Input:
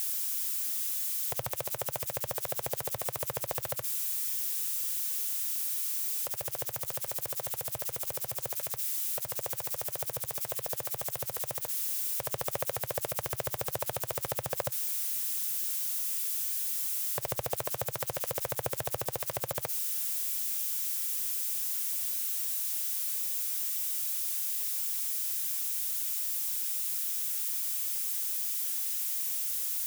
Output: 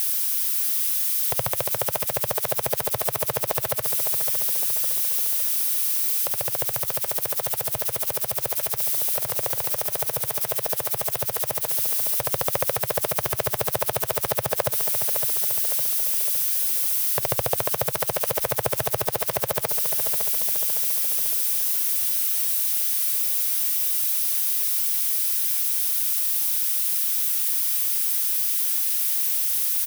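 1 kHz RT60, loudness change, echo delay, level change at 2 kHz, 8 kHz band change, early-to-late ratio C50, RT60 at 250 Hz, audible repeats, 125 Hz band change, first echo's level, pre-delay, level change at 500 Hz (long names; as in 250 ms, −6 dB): no reverb audible, +9.5 dB, 560 ms, +9.5 dB, +8.0 dB, no reverb audible, no reverb audible, 5, +8.0 dB, −9.0 dB, no reverb audible, +9.5 dB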